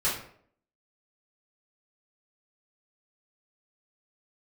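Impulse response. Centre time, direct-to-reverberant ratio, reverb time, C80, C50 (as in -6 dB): 39 ms, -10.0 dB, 0.60 s, 9.0 dB, 4.5 dB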